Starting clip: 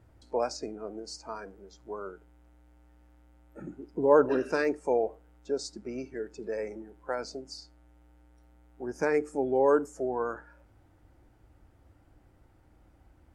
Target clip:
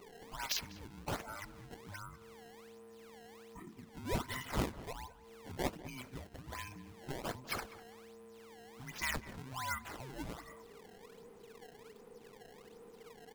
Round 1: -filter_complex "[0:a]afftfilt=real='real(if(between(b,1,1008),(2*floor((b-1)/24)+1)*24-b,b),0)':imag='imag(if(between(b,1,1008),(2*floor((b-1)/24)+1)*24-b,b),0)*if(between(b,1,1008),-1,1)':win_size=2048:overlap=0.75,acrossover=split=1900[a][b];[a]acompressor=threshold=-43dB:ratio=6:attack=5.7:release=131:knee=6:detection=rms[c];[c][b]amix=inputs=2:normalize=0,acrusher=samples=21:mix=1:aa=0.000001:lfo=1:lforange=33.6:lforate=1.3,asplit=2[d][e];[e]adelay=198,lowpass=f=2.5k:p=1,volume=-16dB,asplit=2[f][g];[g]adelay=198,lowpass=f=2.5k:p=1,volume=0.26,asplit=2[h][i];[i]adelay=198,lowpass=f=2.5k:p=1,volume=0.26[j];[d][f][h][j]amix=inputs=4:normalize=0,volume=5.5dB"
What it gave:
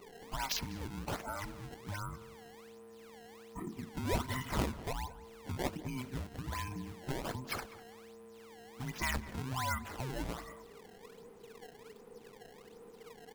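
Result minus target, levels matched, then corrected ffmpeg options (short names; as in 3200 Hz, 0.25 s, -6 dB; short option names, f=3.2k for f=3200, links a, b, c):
compressor: peak gain reduction -9.5 dB
-filter_complex "[0:a]afftfilt=real='real(if(between(b,1,1008),(2*floor((b-1)/24)+1)*24-b,b),0)':imag='imag(if(between(b,1,1008),(2*floor((b-1)/24)+1)*24-b,b),0)*if(between(b,1,1008),-1,1)':win_size=2048:overlap=0.75,acrossover=split=1900[a][b];[a]acompressor=threshold=-54.5dB:ratio=6:attack=5.7:release=131:knee=6:detection=rms[c];[c][b]amix=inputs=2:normalize=0,acrusher=samples=21:mix=1:aa=0.000001:lfo=1:lforange=33.6:lforate=1.3,asplit=2[d][e];[e]adelay=198,lowpass=f=2.5k:p=1,volume=-16dB,asplit=2[f][g];[g]adelay=198,lowpass=f=2.5k:p=1,volume=0.26,asplit=2[h][i];[i]adelay=198,lowpass=f=2.5k:p=1,volume=0.26[j];[d][f][h][j]amix=inputs=4:normalize=0,volume=5.5dB"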